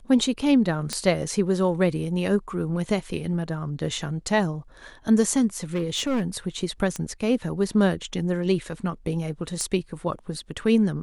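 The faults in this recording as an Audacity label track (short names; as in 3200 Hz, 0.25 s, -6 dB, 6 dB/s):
0.930000	0.930000	pop -12 dBFS
5.580000	6.250000	clipped -21 dBFS
6.960000	6.960000	pop -16 dBFS
9.610000	9.610000	pop -16 dBFS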